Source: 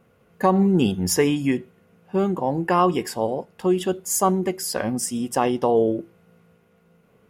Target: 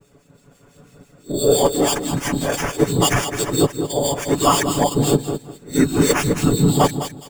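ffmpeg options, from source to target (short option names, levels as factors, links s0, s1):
-filter_complex "[0:a]areverse,acrusher=samples=11:mix=1:aa=0.000001,acontrast=80,equalizer=f=7600:t=o:w=0.37:g=11,dynaudnorm=f=110:g=9:m=2,lowshelf=f=62:g=10,afftfilt=real='hypot(re,im)*cos(2*PI*random(0))':imag='hypot(re,im)*sin(2*PI*random(1))':win_size=512:overlap=0.75,aecho=1:1:7:0.62,asplit=2[s0][s1];[s1]aecho=0:1:208|416|624:0.335|0.0804|0.0193[s2];[s0][s2]amix=inputs=2:normalize=0,acrossover=split=2100[s3][s4];[s3]aeval=exprs='val(0)*(1-0.7/2+0.7/2*cos(2*PI*6*n/s))':c=same[s5];[s4]aeval=exprs='val(0)*(1-0.7/2-0.7/2*cos(2*PI*6*n/s))':c=same[s6];[s5][s6]amix=inputs=2:normalize=0,volume=1.58"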